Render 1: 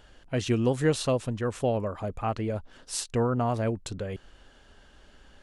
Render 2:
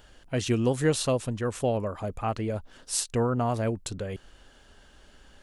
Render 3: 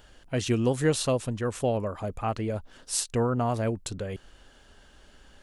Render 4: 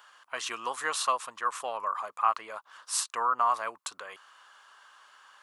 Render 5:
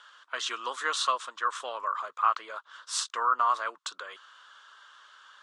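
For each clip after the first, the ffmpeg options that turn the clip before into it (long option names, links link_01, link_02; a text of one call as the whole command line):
ffmpeg -i in.wav -af "highshelf=frequency=7500:gain=8.5" out.wav
ffmpeg -i in.wav -af anull out.wav
ffmpeg -i in.wav -af "highpass=frequency=1100:width_type=q:width=5.8,volume=-1.5dB" out.wav
ffmpeg -i in.wav -af "highpass=frequency=200:width=0.5412,highpass=frequency=200:width=1.3066,equalizer=frequency=220:width_type=q:width=4:gain=-8,equalizer=frequency=770:width_type=q:width=4:gain=-7,equalizer=frequency=1400:width_type=q:width=4:gain=6,equalizer=frequency=2400:width_type=q:width=4:gain=-3,equalizer=frequency=3500:width_type=q:width=4:gain=8,lowpass=frequency=7700:width=0.5412,lowpass=frequency=7700:width=1.3066" -ar 48000 -c:a libvorbis -b:a 48k out.ogg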